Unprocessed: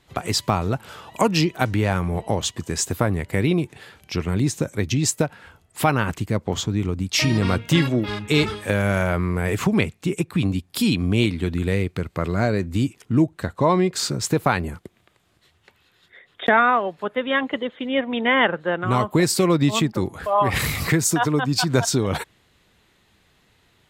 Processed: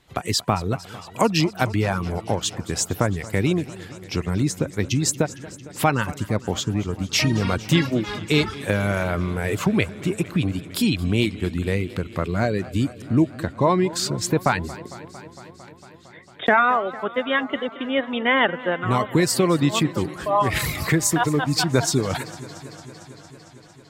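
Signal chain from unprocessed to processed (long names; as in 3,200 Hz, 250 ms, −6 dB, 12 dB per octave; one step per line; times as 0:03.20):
reverb reduction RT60 0.65 s
feedback echo with a swinging delay time 227 ms, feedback 79%, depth 106 cents, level −18.5 dB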